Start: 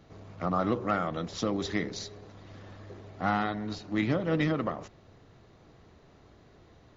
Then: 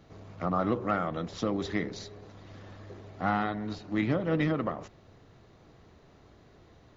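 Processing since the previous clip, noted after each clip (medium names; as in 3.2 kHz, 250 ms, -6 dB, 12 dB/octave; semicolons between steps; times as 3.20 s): dynamic bell 6 kHz, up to -6 dB, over -52 dBFS, Q 0.75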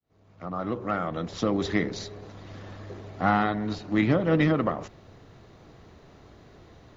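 fade-in on the opening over 1.67 s; trim +5.5 dB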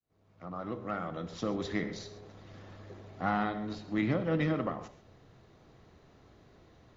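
reverberation, pre-delay 3 ms, DRR 10 dB; trim -8 dB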